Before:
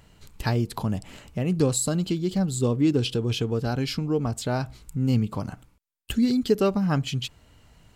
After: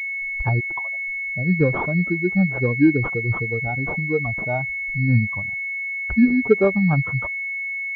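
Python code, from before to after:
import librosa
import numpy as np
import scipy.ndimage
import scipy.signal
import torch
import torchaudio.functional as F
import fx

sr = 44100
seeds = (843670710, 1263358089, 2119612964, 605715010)

y = fx.bin_expand(x, sr, power=2.0)
y = fx.cheby1_highpass(y, sr, hz=520.0, order=5, at=(0.59, 1.06), fade=0.02)
y = fx.pwm(y, sr, carrier_hz=2200.0)
y = F.gain(torch.from_numpy(y), 8.0).numpy()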